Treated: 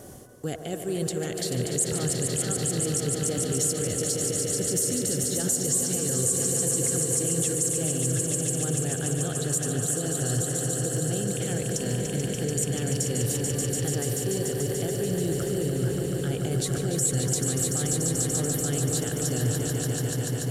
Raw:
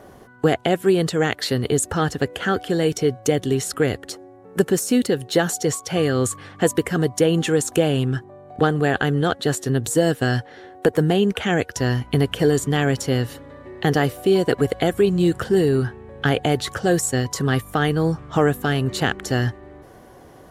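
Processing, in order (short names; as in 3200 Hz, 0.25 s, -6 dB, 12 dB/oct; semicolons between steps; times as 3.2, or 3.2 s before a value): reverse; compressor 6:1, threshold -29 dBFS, peak gain reduction 16.5 dB; reverse; high shelf 3200 Hz +8.5 dB; on a send: swelling echo 0.145 s, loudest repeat 5, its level -8 dB; on the sum: limiter -19.5 dBFS, peak gain reduction 9 dB; graphic EQ 125/1000/2000/4000/8000 Hz +5/-8/-5/-4/+8 dB; band-limited delay 96 ms, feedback 78%, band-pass 670 Hz, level -9 dB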